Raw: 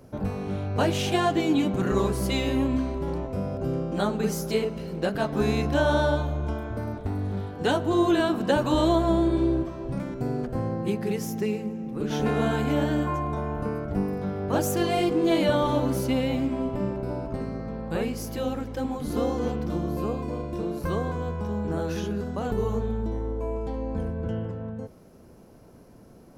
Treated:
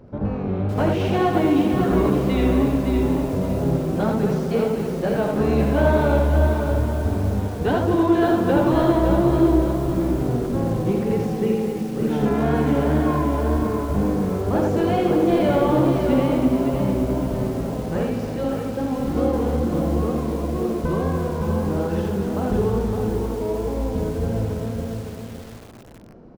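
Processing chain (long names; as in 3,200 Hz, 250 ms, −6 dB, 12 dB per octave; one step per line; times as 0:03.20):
tape wow and flutter 74 cents
sine wavefolder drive 3 dB, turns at −10.5 dBFS
head-to-tape spacing loss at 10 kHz 32 dB
multi-tap delay 66/82/220/317/426 ms −11/−4.5/−10/−11/−20 dB
feedback echo at a low word length 562 ms, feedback 35%, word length 6 bits, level −5.5 dB
level −2 dB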